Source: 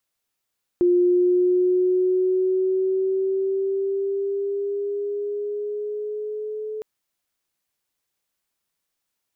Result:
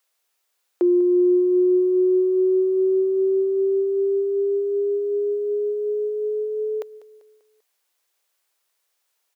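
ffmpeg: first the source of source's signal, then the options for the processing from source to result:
-f lavfi -i "aevalsrc='pow(10,(-14-13.5*t/6.01)/20)*sin(2*PI*353*6.01/(3.5*log(2)/12)*(exp(3.5*log(2)/12*t/6.01)-1))':d=6.01:s=44100"
-af "highpass=f=400:w=0.5412,highpass=f=400:w=1.3066,acontrast=69,aecho=1:1:196|392|588|784:0.126|0.0592|0.0278|0.0131"

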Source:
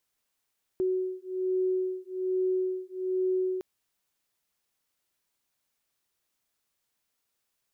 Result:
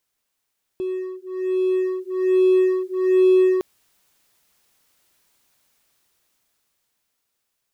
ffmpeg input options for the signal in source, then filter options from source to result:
-f lavfi -i "aevalsrc='0.0335*(sin(2*PI*371*t)+sin(2*PI*372.2*t))':d=2.81:s=44100"
-filter_complex "[0:a]asplit=2[s0][s1];[s1]aeval=exprs='0.0119*(abs(mod(val(0)/0.0119+3,4)-2)-1)':c=same,volume=0.398[s2];[s0][s2]amix=inputs=2:normalize=0,dynaudnorm=f=290:g=13:m=4.22"

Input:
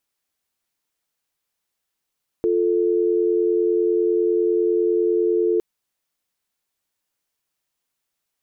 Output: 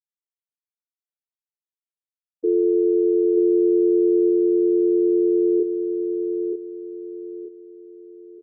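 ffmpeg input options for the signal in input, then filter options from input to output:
-f lavfi -i "aevalsrc='0.112*(sin(2*PI*350*t)+sin(2*PI*440*t))':d=3.16:s=44100"
-filter_complex "[0:a]afftfilt=real='re*gte(hypot(re,im),0.282)':imag='im*gte(hypot(re,im),0.282)':win_size=1024:overlap=0.75,asplit=2[s0][s1];[s1]adelay=28,volume=0.631[s2];[s0][s2]amix=inputs=2:normalize=0,asplit=2[s3][s4];[s4]aecho=0:1:928|1856|2784|3712:0.501|0.17|0.0579|0.0197[s5];[s3][s5]amix=inputs=2:normalize=0"

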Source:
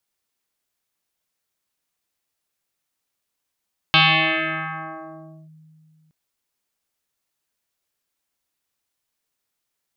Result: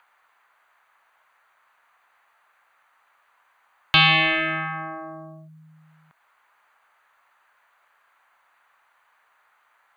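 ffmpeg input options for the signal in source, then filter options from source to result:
-f lavfi -i "aevalsrc='0.316*pow(10,-3*t/2.75)*sin(2*PI*157*t+7.5*clip(1-t/1.55,0,1)*sin(2*PI*3.05*157*t))':d=2.17:s=44100"
-filter_complex "[0:a]acrossover=split=260|900|1600[s0][s1][s2][s3];[s1]volume=28.2,asoftclip=hard,volume=0.0355[s4];[s2]acompressor=mode=upward:threshold=0.0141:ratio=2.5[s5];[s0][s4][s5][s3]amix=inputs=4:normalize=0,asuperstop=centerf=5300:order=4:qfactor=7.1"

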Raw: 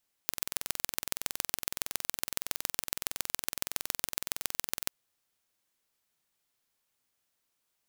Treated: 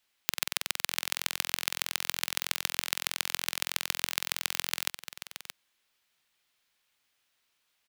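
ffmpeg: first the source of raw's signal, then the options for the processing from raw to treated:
-f lavfi -i "aevalsrc='0.891*eq(mod(n,2042),0)*(0.5+0.5*eq(mod(n,6126),0))':d=4.62:s=44100"
-filter_complex "[0:a]acrossover=split=250|3600[s0][s1][s2];[s1]crystalizer=i=9:c=0[s3];[s0][s3][s2]amix=inputs=3:normalize=0,aecho=1:1:625:0.266"

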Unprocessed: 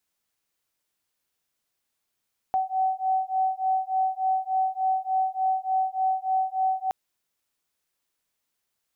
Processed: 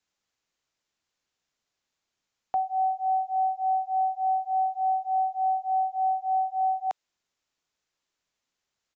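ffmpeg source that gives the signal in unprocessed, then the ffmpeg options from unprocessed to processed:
-f lavfi -i "aevalsrc='0.0531*(sin(2*PI*756*t)+sin(2*PI*759.4*t))':d=4.37:s=44100"
-filter_complex "[0:a]acrossover=split=470|530[s0][s1][s2];[s0]acompressor=threshold=0.00316:ratio=6[s3];[s3][s1][s2]amix=inputs=3:normalize=0,aresample=16000,aresample=44100"

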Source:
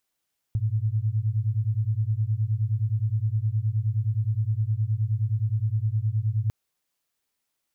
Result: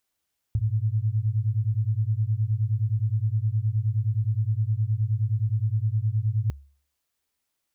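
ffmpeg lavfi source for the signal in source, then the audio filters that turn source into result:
-f lavfi -i "aevalsrc='0.0562*(sin(2*PI*104*t)+sin(2*PI*113.6*t))':d=5.95:s=44100"
-af "equalizer=f=70:t=o:w=0.21:g=14"

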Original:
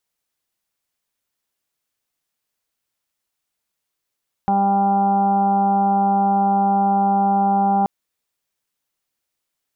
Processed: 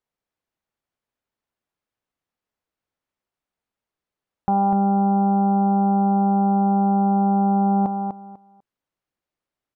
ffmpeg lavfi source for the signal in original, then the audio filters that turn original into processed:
-f lavfi -i "aevalsrc='0.1*sin(2*PI*198*t)+0.0266*sin(2*PI*396*t)+0.0211*sin(2*PI*594*t)+0.168*sin(2*PI*792*t)+0.0266*sin(2*PI*990*t)+0.01*sin(2*PI*1188*t)+0.01*sin(2*PI*1386*t)':d=3.38:s=44100"
-filter_complex "[0:a]lowpass=f=1100:p=1,asplit=2[s0][s1];[s1]aecho=0:1:248|496|744:0.473|0.0946|0.0189[s2];[s0][s2]amix=inputs=2:normalize=0"

